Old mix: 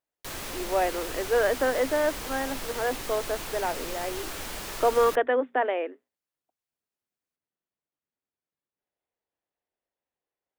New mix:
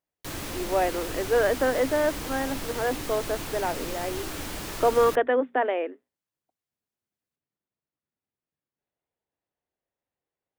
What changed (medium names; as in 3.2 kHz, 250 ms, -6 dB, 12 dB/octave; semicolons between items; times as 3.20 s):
background: add peaking EQ 300 Hz +7.5 dB 0.24 oct; master: add peaking EQ 110 Hz +7.5 dB 2.4 oct